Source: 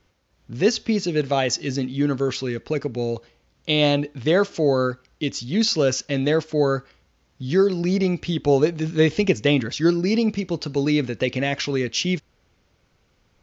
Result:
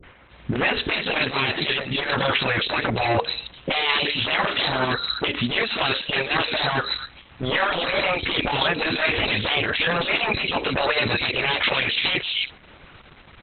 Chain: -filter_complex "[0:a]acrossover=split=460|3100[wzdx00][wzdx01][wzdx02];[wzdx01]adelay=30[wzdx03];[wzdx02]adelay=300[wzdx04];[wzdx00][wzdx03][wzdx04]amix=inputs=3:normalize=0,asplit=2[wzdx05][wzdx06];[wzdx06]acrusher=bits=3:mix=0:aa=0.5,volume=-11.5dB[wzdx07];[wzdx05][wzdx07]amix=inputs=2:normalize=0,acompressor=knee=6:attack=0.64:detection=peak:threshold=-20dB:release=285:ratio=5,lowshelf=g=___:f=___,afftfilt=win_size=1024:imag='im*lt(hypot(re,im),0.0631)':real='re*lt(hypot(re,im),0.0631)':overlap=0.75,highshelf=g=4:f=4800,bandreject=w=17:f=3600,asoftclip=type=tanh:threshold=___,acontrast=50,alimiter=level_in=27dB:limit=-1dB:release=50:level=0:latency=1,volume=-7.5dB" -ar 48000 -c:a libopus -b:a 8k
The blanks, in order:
-10, 450, -22.5dB